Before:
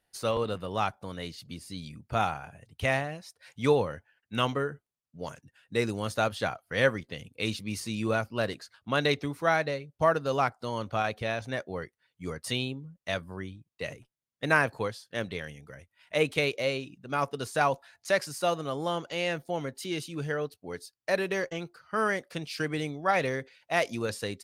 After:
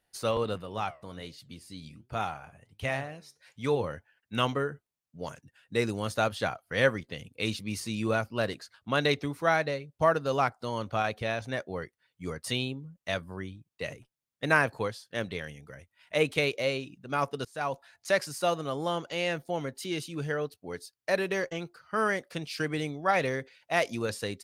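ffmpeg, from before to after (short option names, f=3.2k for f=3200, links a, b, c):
-filter_complex "[0:a]asettb=1/sr,asplit=3[a][b][c];[a]atrim=end=0.624[d];[b]atrim=start=0.62:end=3.84,asetpts=PTS-STARTPTS,afade=t=in:d=0.004:c=qsin,afade=t=out:st=3.216:d=0.004:c=qsin,flanger=delay=5.9:depth=8.9:regen=77:speed=1.3:shape=triangular[e];[c]atrim=start=3.836[f];[d][e]acrossfade=d=0.004:c1=hsin:c2=qsin[g];[g][f]acrossfade=d=0.004:c1=qsin:c2=hsin,asplit=2[h][i];[h]atrim=end=17.45,asetpts=PTS-STARTPTS,afade=t=out:st=17.446:d=0.004:c=hsin:silence=0.0794328[j];[i]atrim=start=17.45,asetpts=PTS-STARTPTS,afade=t=in:d=0.71:c=qsin:silence=0.0794328[k];[j][k]concat=n=2:v=0:a=1"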